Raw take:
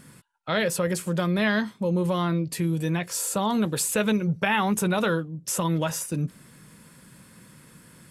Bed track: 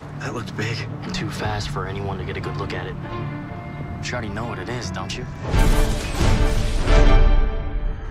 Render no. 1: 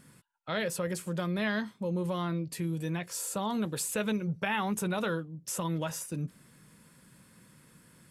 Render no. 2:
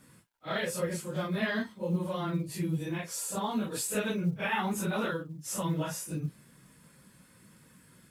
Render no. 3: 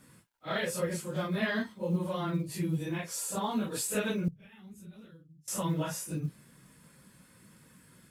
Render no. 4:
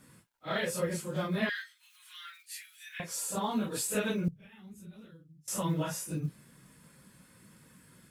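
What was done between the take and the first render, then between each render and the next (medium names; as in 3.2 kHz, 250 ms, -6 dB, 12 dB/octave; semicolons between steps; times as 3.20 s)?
trim -7.5 dB
phase randomisation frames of 100 ms; companded quantiser 8-bit
4.28–5.48 s: amplifier tone stack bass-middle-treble 10-0-1
1.49–3.00 s: steep high-pass 1.5 kHz 48 dB/octave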